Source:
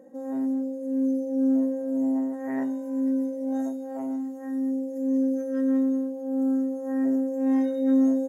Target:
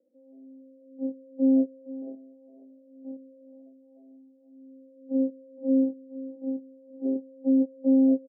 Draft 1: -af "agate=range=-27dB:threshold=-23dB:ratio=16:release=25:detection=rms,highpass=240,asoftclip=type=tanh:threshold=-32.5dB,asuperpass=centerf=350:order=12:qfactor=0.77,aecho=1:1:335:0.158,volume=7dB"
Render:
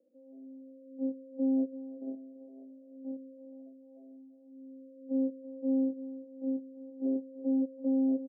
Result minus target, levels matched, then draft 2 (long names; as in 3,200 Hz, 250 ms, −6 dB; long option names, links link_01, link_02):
soft clipping: distortion +9 dB; echo 132 ms early
-af "agate=range=-27dB:threshold=-23dB:ratio=16:release=25:detection=rms,highpass=240,asoftclip=type=tanh:threshold=-22dB,asuperpass=centerf=350:order=12:qfactor=0.77,aecho=1:1:467:0.158,volume=7dB"